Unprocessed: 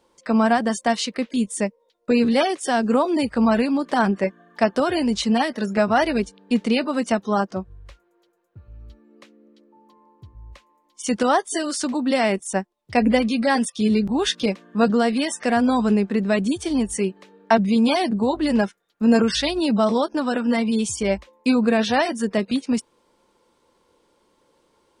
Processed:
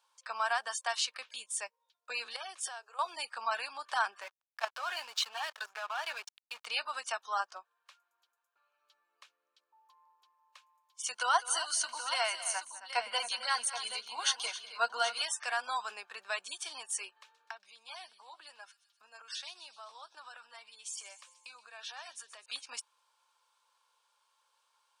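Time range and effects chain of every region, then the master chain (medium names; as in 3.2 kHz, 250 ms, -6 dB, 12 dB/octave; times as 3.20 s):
2.36–2.99 s: bass shelf 440 Hz +9.5 dB + compression 12:1, threshold -24 dBFS + brick-wall FIR high-pass 280 Hz
4.21–6.66 s: overdrive pedal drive 13 dB, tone 4.2 kHz, clips at -4.5 dBFS + level held to a coarse grid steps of 12 dB + hysteresis with a dead band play -32.5 dBFS
11.15–15.22 s: rippled EQ curve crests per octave 1.9, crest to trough 11 dB + multi-tap echo 203/268/776 ms -16.5/-14/-11 dB
17.09–22.46 s: compression 8:1, threshold -31 dBFS + feedback echo behind a high-pass 126 ms, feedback 57%, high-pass 3.7 kHz, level -12 dB
whole clip: high-pass 950 Hz 24 dB/octave; band-stop 2 kHz, Q 5.2; trim -5.5 dB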